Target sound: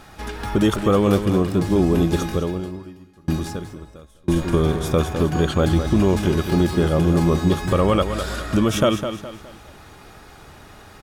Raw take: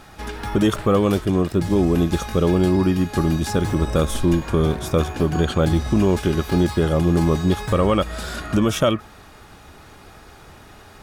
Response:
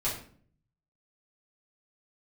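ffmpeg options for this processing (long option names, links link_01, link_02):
-filter_complex "[0:a]aecho=1:1:207|414|621|828:0.355|0.131|0.0486|0.018,asettb=1/sr,asplit=3[link_01][link_02][link_03];[link_01]atrim=end=2.284[link_04];[link_02]atrim=start=2.28:end=4.36,asetpts=PTS-STARTPTS,afade=type=in:duration=0.004:curve=qsin,afade=type=out:start_time=2.076:duration=0.004:curve=qsin,aeval=exprs='val(0)*pow(10,-34*if(lt(mod(1*n/s,1),2*abs(1)/1000),1-mod(1*n/s,1)/(2*abs(1)/1000),(mod(1*n/s,1)-2*abs(1)/1000)/(1-2*abs(1)/1000))/20)':channel_layout=same[link_05];[link_03]atrim=start=4.356[link_06];[link_04][link_05]acrossfade=duration=0.004:curve1=hsin:curve2=qsin[link_07];[link_07][link_06]acrossfade=duration=0.004:curve1=qsin:curve2=hsin"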